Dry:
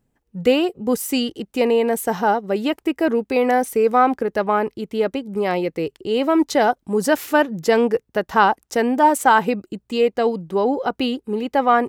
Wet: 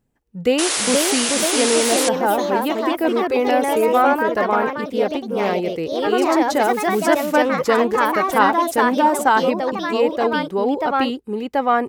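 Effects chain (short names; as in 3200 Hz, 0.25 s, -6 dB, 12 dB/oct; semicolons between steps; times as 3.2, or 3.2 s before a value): echoes that change speed 0.528 s, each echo +2 st, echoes 3; painted sound noise, 0.58–2.09, 270–11000 Hz -20 dBFS; gain -1.5 dB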